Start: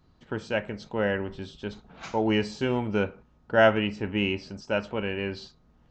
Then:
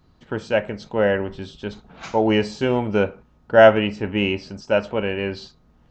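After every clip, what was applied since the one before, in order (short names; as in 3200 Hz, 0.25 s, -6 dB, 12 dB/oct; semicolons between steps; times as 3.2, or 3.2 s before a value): dynamic EQ 590 Hz, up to +5 dB, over -36 dBFS, Q 1.5; gain +4.5 dB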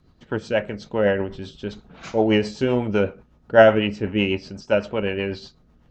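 rotary speaker horn 8 Hz; gain +1.5 dB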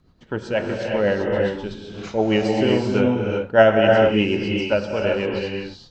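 non-linear reverb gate 0.42 s rising, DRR 0.5 dB; gain -1 dB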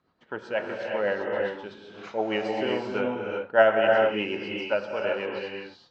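band-pass 1200 Hz, Q 0.65; gain -2.5 dB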